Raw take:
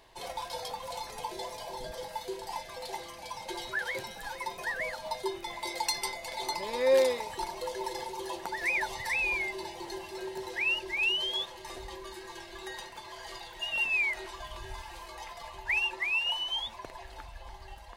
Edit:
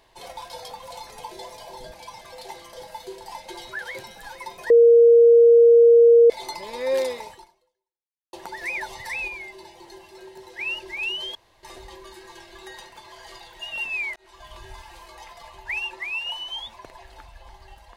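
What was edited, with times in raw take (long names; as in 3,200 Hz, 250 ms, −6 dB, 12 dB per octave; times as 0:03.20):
0:01.94–0:02.65: swap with 0:03.17–0:03.44
0:04.70–0:06.30: beep over 468 Hz −9 dBFS
0:07.28–0:08.33: fade out exponential
0:09.28–0:10.59: clip gain −5 dB
0:11.35–0:11.63: fill with room tone
0:14.16–0:14.53: fade in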